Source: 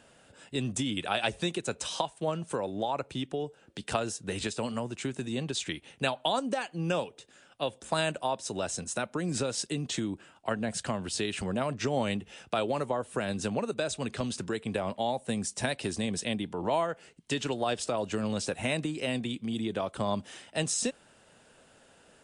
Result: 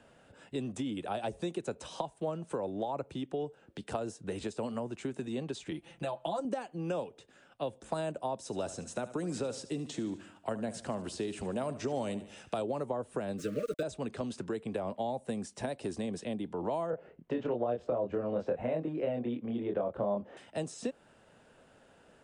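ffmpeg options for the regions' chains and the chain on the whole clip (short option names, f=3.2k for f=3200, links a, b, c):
-filter_complex "[0:a]asettb=1/sr,asplit=3[a][b][c];[a]atrim=end=5.714[d];[b]atrim=start=5.71:end=6.45,asetpts=PTS-STARTPTS,afade=t=in:d=0.004:c=qsin,afade=t=out:st=0.736:d=0.004:c=qsin,bandreject=f=450:w=6.5,aecho=1:1:5.9:0.99,atrim=end_sample=32634,acompressor=threshold=-28dB:ratio=2:attack=3.2:release=140:knee=1:detection=peak[e];[c]atrim=start=6.446[f];[d][e]acrossfade=d=0.004:c1=hsin:c2=qsin[g];[g][f]acrossfade=d=0.004:c1=qsin:c2=hsin,asettb=1/sr,asplit=3[h][i][j];[h]atrim=end=8.384[k];[i]atrim=start=8.38:end=12.62,asetpts=PTS-STARTPTS,afade=t=in:d=0.004:c=qsin,afade=t=out:st=4.236:d=0.004:c=qsin,highshelf=f=3.7k:g=10,aecho=1:1:73|146|219|292:0.168|0.0755|0.034|0.0153,atrim=end_sample=186984[l];[j]atrim=start=12.616[m];[k][l]acrossfade=d=0.004:c1=hsin:c2=qsin[n];[n][m]acrossfade=d=0.004:c1=qsin:c2=hsin,asettb=1/sr,asplit=3[o][p][q];[o]atrim=end=13.384[r];[p]atrim=start=13.38:end=13.83,asetpts=PTS-STARTPTS,afade=t=in:d=0.004:c=qsin,afade=t=out:st=0.446:d=0.004:c=qsin,aecho=1:1:6.5:0.77,atrim=end_sample=19845,aeval=exprs='val(0)*gte(abs(val(0)),0.0133)':c=same,asuperstop=centerf=840:order=20:qfactor=1.6[s];[q]atrim=start=13.826[t];[r][s]acrossfade=d=0.004:c1=hsin:c2=qsin[u];[u][t]acrossfade=d=0.004:c1=qsin:c2=hsin,asettb=1/sr,asplit=3[v][w][x];[v]atrim=end=16.904[y];[w]atrim=start=16.9:end=20.37,asetpts=PTS-STARTPTS,afade=t=in:d=0.004:c=qsin,afade=t=out:st=3.466:d=0.004:c=qsin,lowpass=1.7k,equalizer=f=540:w=2:g=8,asplit=2[z][aa];[aa]adelay=25,volume=-2.5dB[ab];[z][ab]amix=inputs=2:normalize=0,atrim=end_sample=153027[ac];[x]atrim=start=20.366[ad];[y][ac]acrossfade=d=0.004:c1=hsin:c2=qsin[ae];[ae][ad]acrossfade=d=0.004:c1=qsin:c2=hsin,highshelf=f=2.9k:g=-11,acrossover=split=230|950|5100[af][ag][ah][ai];[af]acompressor=threshold=-45dB:ratio=4[aj];[ag]acompressor=threshold=-31dB:ratio=4[ak];[ah]acompressor=threshold=-50dB:ratio=4[al];[ai]acompressor=threshold=-50dB:ratio=4[am];[aj][ak][al][am]amix=inputs=4:normalize=0"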